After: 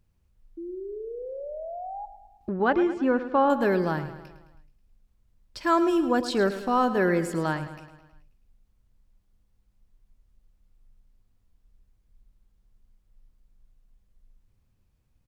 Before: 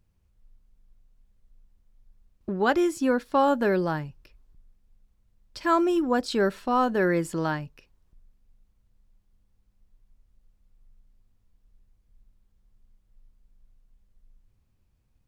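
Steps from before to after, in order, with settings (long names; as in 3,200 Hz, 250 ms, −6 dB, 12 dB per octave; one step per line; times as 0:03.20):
0:00.57–0:02.06: sound drawn into the spectrogram rise 330–840 Hz −36 dBFS
0:02.49–0:03.50: low-pass filter 2,300 Hz 12 dB per octave
repeating echo 107 ms, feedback 56%, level −12.5 dB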